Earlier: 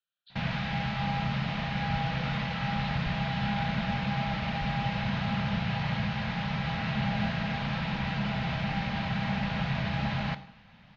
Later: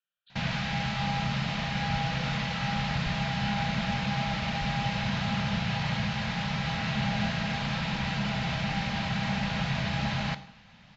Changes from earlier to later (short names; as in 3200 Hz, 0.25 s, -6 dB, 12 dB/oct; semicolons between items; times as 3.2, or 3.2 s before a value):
speech: add LPF 3000 Hz 24 dB/oct; master: remove air absorption 170 m